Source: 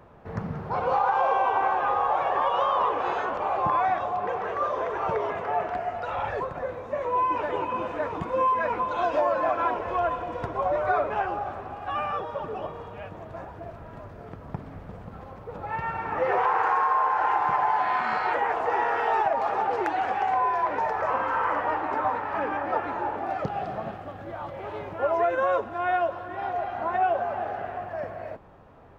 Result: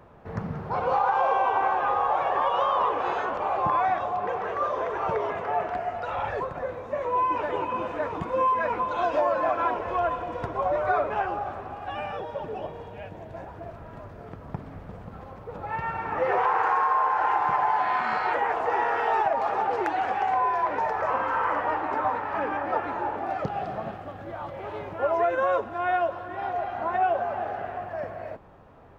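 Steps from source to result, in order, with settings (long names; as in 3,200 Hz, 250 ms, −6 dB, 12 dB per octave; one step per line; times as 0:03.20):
0:11.86–0:13.47: parametric band 1,200 Hz −13 dB 0.27 octaves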